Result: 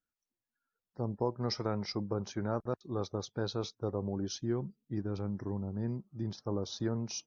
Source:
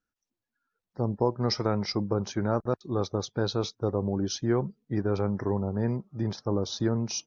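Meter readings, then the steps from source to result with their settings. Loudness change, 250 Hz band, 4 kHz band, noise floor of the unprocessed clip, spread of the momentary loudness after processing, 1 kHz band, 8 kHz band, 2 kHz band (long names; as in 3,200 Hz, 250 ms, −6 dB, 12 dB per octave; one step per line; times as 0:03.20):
−7.5 dB, −7.0 dB, −7.0 dB, below −85 dBFS, 4 LU, −7.5 dB, can't be measured, −8.0 dB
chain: gain on a spectral selection 0:04.38–0:06.39, 370–2,500 Hz −6 dB
level −7 dB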